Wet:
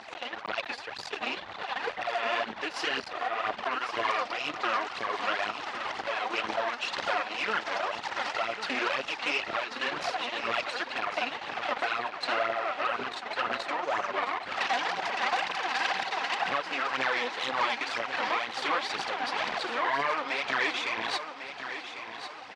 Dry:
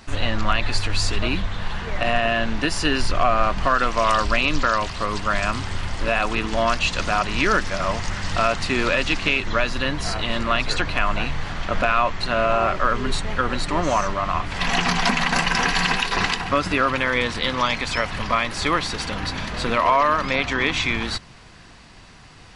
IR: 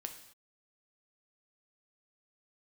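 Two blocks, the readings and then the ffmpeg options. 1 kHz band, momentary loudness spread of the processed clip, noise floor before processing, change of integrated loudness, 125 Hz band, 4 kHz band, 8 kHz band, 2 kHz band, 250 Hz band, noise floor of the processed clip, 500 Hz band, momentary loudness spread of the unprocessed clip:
-7.5 dB, 6 LU, -45 dBFS, -9.0 dB, -27.5 dB, -8.0 dB, -14.0 dB, -7.5 dB, -16.0 dB, -43 dBFS, -9.5 dB, 6 LU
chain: -af "equalizer=f=790:t=o:w=0.27:g=9,acompressor=threshold=-27dB:ratio=8,aeval=exprs='0.188*(cos(1*acos(clip(val(0)/0.188,-1,1)))-cos(1*PI/2))+0.0841*(cos(4*acos(clip(val(0)/0.188,-1,1)))-cos(4*PI/2))':c=same,aphaser=in_gain=1:out_gain=1:delay=4.3:decay=0.64:speed=2:type=triangular,asoftclip=type=hard:threshold=-15.5dB,tremolo=f=1.7:d=0.36,highpass=450,lowpass=4k,aecho=1:1:1099|2198|3297|4396:0.316|0.13|0.0532|0.0218"

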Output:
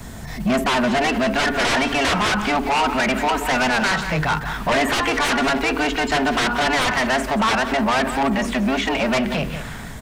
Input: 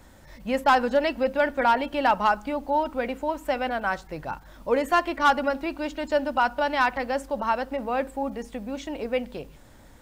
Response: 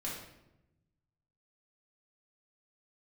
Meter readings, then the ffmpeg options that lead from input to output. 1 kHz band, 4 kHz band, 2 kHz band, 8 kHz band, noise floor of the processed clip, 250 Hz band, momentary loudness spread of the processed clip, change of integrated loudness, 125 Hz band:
+3.5 dB, +13.5 dB, +9.0 dB, +18.0 dB, -32 dBFS, +9.0 dB, 3 LU, +6.0 dB, +17.5 dB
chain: -filter_complex "[0:a]acrossover=split=270|1000|3200[a][b][c][d];[a]equalizer=f=180:t=o:w=1.8:g=9.5[e];[b]afreqshift=130[f];[c]dynaudnorm=f=690:g=3:m=13.5dB[g];[e][f][g][d]amix=inputs=4:normalize=0,aeval=exprs='0.841*sin(PI/2*7.08*val(0)/0.841)':c=same,acrossover=split=3300[h][i];[i]acompressor=threshold=-24dB:ratio=4:attack=1:release=60[j];[h][j]amix=inputs=2:normalize=0,bandreject=f=46.96:t=h:w=4,bandreject=f=93.92:t=h:w=4,bandreject=f=140.88:t=h:w=4,bandreject=f=187.84:t=h:w=4,bandreject=f=234.8:t=h:w=4,bandreject=f=281.76:t=h:w=4,bandreject=f=328.72:t=h:w=4,bandreject=f=375.68:t=h:w=4,bandreject=f=422.64:t=h:w=4,bandreject=f=469.6:t=h:w=4,asoftclip=type=tanh:threshold=-7dB,equalizer=f=8.4k:t=o:w=1.1:g=3.5,asplit=2[k][l];[l]adelay=180.8,volume=-12dB,highshelf=f=4k:g=-4.07[m];[k][m]amix=inputs=2:normalize=0,alimiter=limit=-8.5dB:level=0:latency=1:release=98,volume=-6dB"

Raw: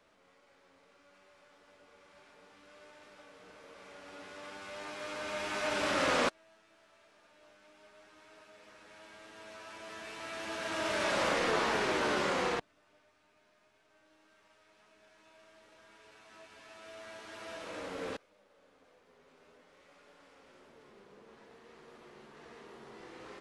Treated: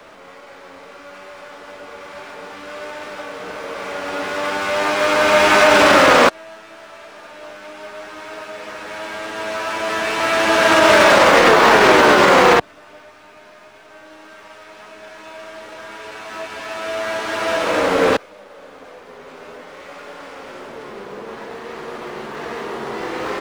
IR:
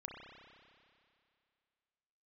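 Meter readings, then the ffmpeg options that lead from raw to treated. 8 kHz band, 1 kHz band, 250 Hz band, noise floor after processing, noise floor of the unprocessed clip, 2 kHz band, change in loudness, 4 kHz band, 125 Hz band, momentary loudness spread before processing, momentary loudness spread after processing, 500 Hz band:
+18.0 dB, +22.0 dB, +19.5 dB, -43 dBFS, -68 dBFS, +21.0 dB, +20.0 dB, +19.0 dB, +18.0 dB, 23 LU, 23 LU, +21.5 dB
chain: -filter_complex "[0:a]equalizer=f=880:w=0.37:g=5.5,acrossover=split=130|920[a][b][c];[c]acrusher=bits=6:mode=log:mix=0:aa=0.000001[d];[a][b][d]amix=inputs=3:normalize=0,alimiter=level_in=21.5dB:limit=-1dB:release=50:level=0:latency=1,volume=-1dB"

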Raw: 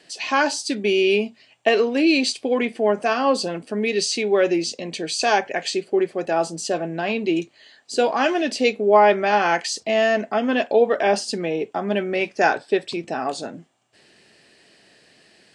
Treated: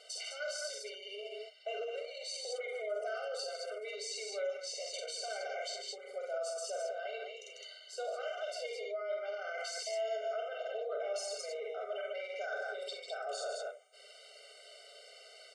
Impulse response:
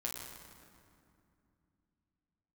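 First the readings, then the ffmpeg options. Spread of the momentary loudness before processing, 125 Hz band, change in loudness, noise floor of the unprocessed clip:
8 LU, under -40 dB, -18.5 dB, -56 dBFS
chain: -af "areverse,acompressor=threshold=-30dB:ratio=10,areverse,aecho=1:1:47|83|145|209:0.631|0.251|0.398|0.501,alimiter=level_in=5dB:limit=-24dB:level=0:latency=1:release=18,volume=-5dB,aecho=1:1:3.3:0.36,afftfilt=real='re*eq(mod(floor(b*sr/1024/390),2),1)':imag='im*eq(mod(floor(b*sr/1024/390),2),1)':win_size=1024:overlap=0.75"

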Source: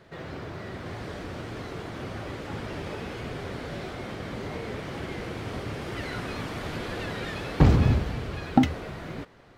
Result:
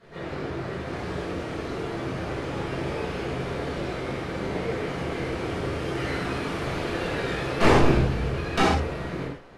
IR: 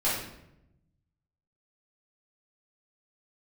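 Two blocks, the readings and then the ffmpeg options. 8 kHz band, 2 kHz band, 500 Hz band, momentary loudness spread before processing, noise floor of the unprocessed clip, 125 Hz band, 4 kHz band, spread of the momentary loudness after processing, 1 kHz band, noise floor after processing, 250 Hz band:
+5.5 dB, +6.0 dB, +7.5 dB, 14 LU, -40 dBFS, -1.0 dB, +5.0 dB, 10 LU, +6.0 dB, -35 dBFS, +1.0 dB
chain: -filter_complex "[0:a]aeval=exprs='0.708*(cos(1*acos(clip(val(0)/0.708,-1,1)))-cos(1*PI/2))+0.178*(cos(7*acos(clip(val(0)/0.708,-1,1)))-cos(7*PI/2))':c=same,aeval=exprs='0.224*(abs(mod(val(0)/0.224+3,4)-2)-1)':c=same[a];[1:a]atrim=start_sample=2205,atrim=end_sample=3969,asetrate=24696,aresample=44100[b];[a][b]afir=irnorm=-1:irlink=0,volume=-6.5dB"

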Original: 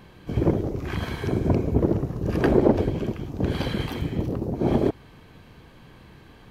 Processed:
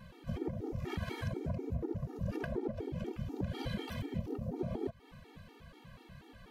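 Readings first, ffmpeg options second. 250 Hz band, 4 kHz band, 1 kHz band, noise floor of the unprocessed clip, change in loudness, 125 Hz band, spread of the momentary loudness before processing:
-15.0 dB, -11.5 dB, -15.0 dB, -50 dBFS, -14.5 dB, -13.5 dB, 9 LU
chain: -af "acompressor=threshold=-28dB:ratio=12,afftfilt=real='re*gt(sin(2*PI*4.1*pts/sr)*(1-2*mod(floor(b*sr/1024/240),2)),0)':imag='im*gt(sin(2*PI*4.1*pts/sr)*(1-2*mod(floor(b*sr/1024/240),2)),0)':win_size=1024:overlap=0.75,volume=-2.5dB"

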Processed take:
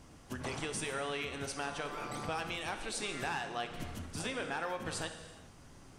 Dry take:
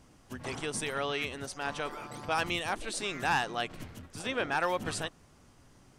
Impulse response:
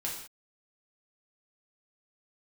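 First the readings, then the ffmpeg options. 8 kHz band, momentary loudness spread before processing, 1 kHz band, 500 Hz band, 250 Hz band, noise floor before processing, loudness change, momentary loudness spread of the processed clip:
-2.0 dB, 11 LU, -6.0 dB, -4.5 dB, -3.0 dB, -60 dBFS, -5.0 dB, 9 LU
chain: -filter_complex "[0:a]acompressor=threshold=-38dB:ratio=6,asplit=2[a][b];[1:a]atrim=start_sample=2205,asetrate=22491,aresample=44100[c];[b][c]afir=irnorm=-1:irlink=0,volume=-10.5dB[d];[a][d]amix=inputs=2:normalize=0"

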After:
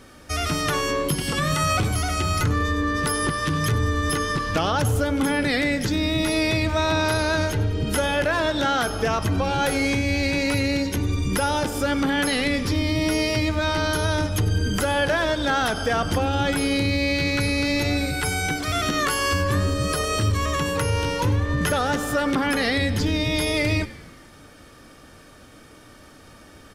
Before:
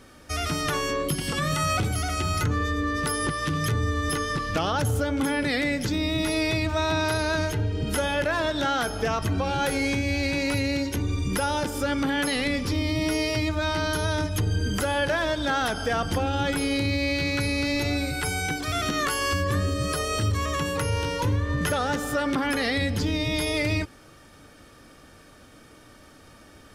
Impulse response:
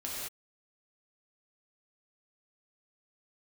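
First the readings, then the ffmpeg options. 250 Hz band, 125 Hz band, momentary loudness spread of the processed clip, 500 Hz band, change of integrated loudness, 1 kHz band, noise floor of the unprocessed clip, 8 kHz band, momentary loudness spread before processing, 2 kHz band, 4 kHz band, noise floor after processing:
+3.0 dB, +3.0 dB, 2 LU, +3.0 dB, +3.0 dB, +3.0 dB, -51 dBFS, +3.0 dB, 2 LU, +3.0 dB, +3.0 dB, -48 dBFS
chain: -filter_complex "[0:a]asplit=6[a][b][c][d][e][f];[b]adelay=98,afreqshift=-88,volume=-18dB[g];[c]adelay=196,afreqshift=-176,volume=-22.4dB[h];[d]adelay=294,afreqshift=-264,volume=-26.9dB[i];[e]adelay=392,afreqshift=-352,volume=-31.3dB[j];[f]adelay=490,afreqshift=-440,volume=-35.7dB[k];[a][g][h][i][j][k]amix=inputs=6:normalize=0,volume=3dB"

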